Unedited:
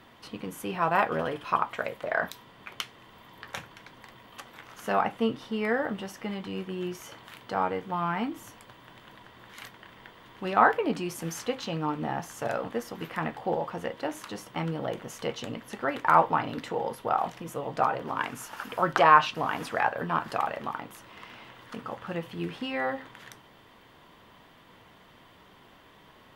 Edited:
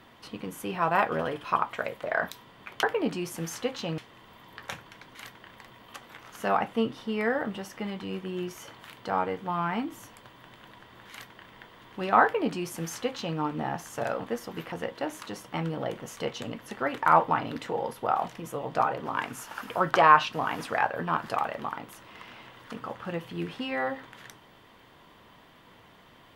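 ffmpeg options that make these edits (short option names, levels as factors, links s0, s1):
-filter_complex "[0:a]asplit=6[s0][s1][s2][s3][s4][s5];[s0]atrim=end=2.832[s6];[s1]atrim=start=10.668:end=11.822[s7];[s2]atrim=start=2.828:end=4.002[s8];[s3]atrim=start=9.538:end=9.952[s9];[s4]atrim=start=3.998:end=13.162[s10];[s5]atrim=start=13.738[s11];[s6][s7]acrossfade=d=0.004:c1=hsin:c2=hsin[s12];[s12][s8]acrossfade=d=0.004:c1=hsin:c2=hsin[s13];[s13][s9]acrossfade=d=0.004:c1=hsin:c2=hsin[s14];[s14][s10]acrossfade=d=0.004:c1=hsin:c2=hsin[s15];[s15][s11]acrossfade=d=0.004:c1=hsin:c2=hsin"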